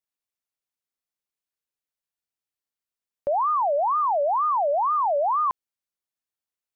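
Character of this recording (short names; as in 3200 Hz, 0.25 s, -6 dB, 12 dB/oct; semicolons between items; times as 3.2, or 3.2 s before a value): noise floor -92 dBFS; spectral tilt +1.0 dB/oct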